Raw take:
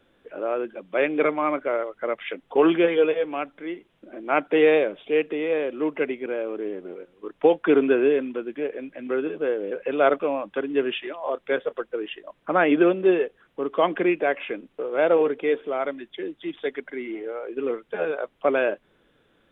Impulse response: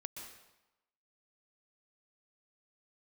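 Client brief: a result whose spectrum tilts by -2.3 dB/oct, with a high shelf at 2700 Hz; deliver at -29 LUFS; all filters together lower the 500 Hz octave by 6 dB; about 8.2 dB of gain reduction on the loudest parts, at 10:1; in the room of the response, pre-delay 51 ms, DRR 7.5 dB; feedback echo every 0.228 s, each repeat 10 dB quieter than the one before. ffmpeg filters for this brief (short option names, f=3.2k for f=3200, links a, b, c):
-filter_complex "[0:a]equalizer=f=500:t=o:g=-7.5,highshelf=f=2.7k:g=4,acompressor=threshold=-25dB:ratio=10,aecho=1:1:228|456|684|912:0.316|0.101|0.0324|0.0104,asplit=2[a][b];[1:a]atrim=start_sample=2205,adelay=51[c];[b][c]afir=irnorm=-1:irlink=0,volume=-5dB[d];[a][d]amix=inputs=2:normalize=0,volume=2.5dB"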